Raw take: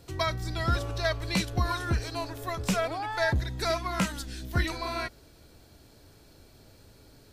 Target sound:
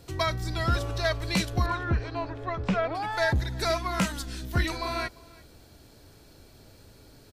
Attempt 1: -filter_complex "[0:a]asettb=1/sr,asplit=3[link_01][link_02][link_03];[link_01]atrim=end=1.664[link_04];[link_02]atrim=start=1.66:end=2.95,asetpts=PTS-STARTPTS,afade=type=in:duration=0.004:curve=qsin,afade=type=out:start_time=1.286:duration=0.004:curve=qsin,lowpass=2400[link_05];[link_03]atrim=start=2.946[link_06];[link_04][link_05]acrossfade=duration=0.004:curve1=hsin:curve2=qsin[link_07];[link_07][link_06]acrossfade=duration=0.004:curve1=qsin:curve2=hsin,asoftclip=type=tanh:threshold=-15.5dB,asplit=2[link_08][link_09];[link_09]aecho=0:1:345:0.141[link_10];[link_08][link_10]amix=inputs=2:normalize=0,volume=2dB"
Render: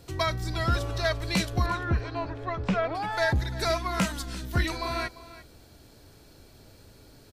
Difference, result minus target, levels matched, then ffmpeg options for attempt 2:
echo-to-direct +7 dB
-filter_complex "[0:a]asettb=1/sr,asplit=3[link_01][link_02][link_03];[link_01]atrim=end=1.664[link_04];[link_02]atrim=start=1.66:end=2.95,asetpts=PTS-STARTPTS,afade=type=in:duration=0.004:curve=qsin,afade=type=out:start_time=1.286:duration=0.004:curve=qsin,lowpass=2400[link_05];[link_03]atrim=start=2.946[link_06];[link_04][link_05]acrossfade=duration=0.004:curve1=hsin:curve2=qsin[link_07];[link_07][link_06]acrossfade=duration=0.004:curve1=qsin:curve2=hsin,asoftclip=type=tanh:threshold=-15.5dB,asplit=2[link_08][link_09];[link_09]aecho=0:1:345:0.0631[link_10];[link_08][link_10]amix=inputs=2:normalize=0,volume=2dB"

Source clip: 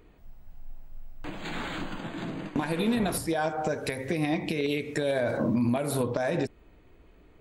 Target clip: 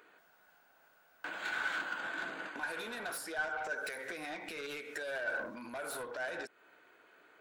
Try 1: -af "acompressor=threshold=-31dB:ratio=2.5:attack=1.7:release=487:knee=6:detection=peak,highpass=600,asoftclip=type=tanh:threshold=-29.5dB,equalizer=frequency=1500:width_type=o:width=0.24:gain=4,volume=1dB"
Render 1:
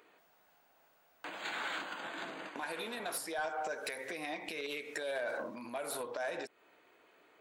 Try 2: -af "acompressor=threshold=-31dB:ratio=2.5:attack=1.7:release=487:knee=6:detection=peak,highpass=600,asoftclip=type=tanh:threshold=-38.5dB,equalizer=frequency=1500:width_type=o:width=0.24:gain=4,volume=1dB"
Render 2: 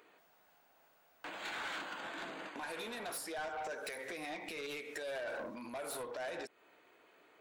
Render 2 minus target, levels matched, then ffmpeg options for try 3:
2,000 Hz band −4.0 dB
-af "acompressor=threshold=-31dB:ratio=2.5:attack=1.7:release=487:knee=6:detection=peak,highpass=600,asoftclip=type=tanh:threshold=-38.5dB,equalizer=frequency=1500:width_type=o:width=0.24:gain=15.5,volume=1dB"

